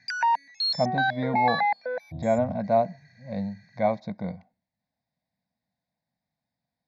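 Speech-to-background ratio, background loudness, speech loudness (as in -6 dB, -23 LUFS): -2.5 dB, -26.0 LUFS, -28.5 LUFS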